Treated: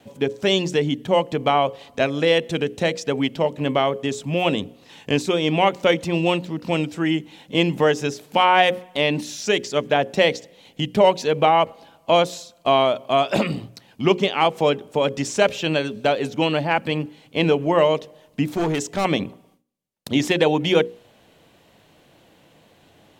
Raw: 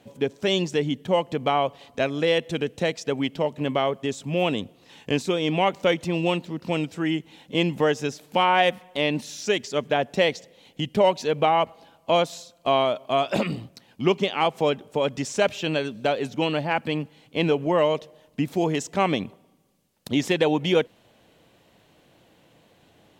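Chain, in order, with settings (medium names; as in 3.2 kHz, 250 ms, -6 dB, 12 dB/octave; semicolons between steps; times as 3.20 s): gate with hold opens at -52 dBFS; hum notches 60/120/180/240/300/360/420/480/540 Hz; 18.54–19.05 s: hard clipper -22 dBFS, distortion -22 dB; trim +4 dB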